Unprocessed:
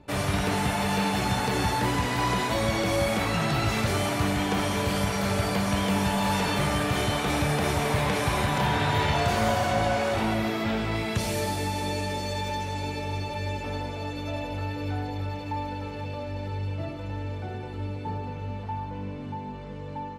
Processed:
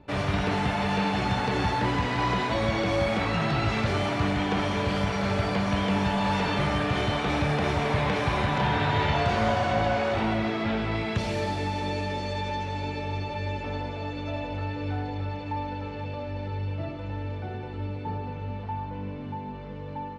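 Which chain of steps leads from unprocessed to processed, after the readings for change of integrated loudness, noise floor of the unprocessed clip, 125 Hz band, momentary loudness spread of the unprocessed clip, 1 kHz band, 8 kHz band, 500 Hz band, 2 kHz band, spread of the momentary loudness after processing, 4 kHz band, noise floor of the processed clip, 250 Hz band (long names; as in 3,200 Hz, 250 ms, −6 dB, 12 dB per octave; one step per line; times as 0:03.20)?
−0.5 dB, −36 dBFS, 0.0 dB, 10 LU, 0.0 dB, −11.0 dB, 0.0 dB, 0.0 dB, 10 LU, −2.0 dB, −36 dBFS, 0.0 dB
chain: low-pass filter 4,100 Hz 12 dB per octave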